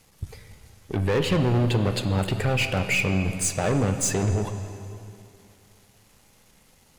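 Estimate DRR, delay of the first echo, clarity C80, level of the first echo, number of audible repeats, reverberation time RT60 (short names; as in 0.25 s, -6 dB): 7.0 dB, none, 9.0 dB, none, none, 2.6 s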